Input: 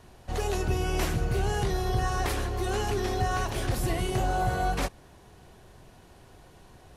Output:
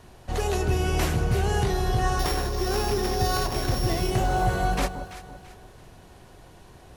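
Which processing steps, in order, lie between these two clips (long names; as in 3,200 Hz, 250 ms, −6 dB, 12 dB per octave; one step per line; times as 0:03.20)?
0:02.19–0:04.11: samples sorted by size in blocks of 8 samples
delay that swaps between a low-pass and a high-pass 168 ms, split 1,000 Hz, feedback 59%, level −8.5 dB
level +3 dB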